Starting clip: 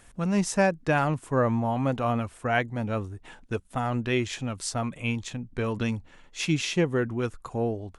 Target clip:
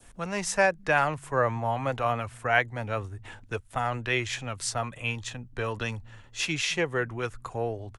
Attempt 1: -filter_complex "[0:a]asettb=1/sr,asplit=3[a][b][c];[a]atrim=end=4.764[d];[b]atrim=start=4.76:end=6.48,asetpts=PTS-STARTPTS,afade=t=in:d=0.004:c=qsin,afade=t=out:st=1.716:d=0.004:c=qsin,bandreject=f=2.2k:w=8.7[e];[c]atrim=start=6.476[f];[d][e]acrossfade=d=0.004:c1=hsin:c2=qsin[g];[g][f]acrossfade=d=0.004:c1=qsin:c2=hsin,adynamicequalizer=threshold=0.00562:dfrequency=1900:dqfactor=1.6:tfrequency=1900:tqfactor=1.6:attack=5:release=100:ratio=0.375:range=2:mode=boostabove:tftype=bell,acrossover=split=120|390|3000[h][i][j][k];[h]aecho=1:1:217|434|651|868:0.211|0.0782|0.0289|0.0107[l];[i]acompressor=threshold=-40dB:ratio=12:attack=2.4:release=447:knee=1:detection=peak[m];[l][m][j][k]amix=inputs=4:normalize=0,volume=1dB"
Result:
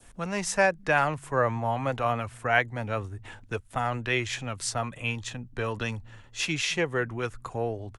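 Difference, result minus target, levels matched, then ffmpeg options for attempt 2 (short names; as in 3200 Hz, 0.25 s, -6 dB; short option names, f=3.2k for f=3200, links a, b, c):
compressor: peak gain reduction -5.5 dB
-filter_complex "[0:a]asettb=1/sr,asplit=3[a][b][c];[a]atrim=end=4.764[d];[b]atrim=start=4.76:end=6.48,asetpts=PTS-STARTPTS,afade=t=in:d=0.004:c=qsin,afade=t=out:st=1.716:d=0.004:c=qsin,bandreject=f=2.2k:w=8.7[e];[c]atrim=start=6.476[f];[d][e]acrossfade=d=0.004:c1=hsin:c2=qsin[g];[g][f]acrossfade=d=0.004:c1=qsin:c2=hsin,adynamicequalizer=threshold=0.00562:dfrequency=1900:dqfactor=1.6:tfrequency=1900:tqfactor=1.6:attack=5:release=100:ratio=0.375:range=2:mode=boostabove:tftype=bell,acrossover=split=120|390|3000[h][i][j][k];[h]aecho=1:1:217|434|651|868:0.211|0.0782|0.0289|0.0107[l];[i]acompressor=threshold=-46dB:ratio=12:attack=2.4:release=447:knee=1:detection=peak[m];[l][m][j][k]amix=inputs=4:normalize=0,volume=1dB"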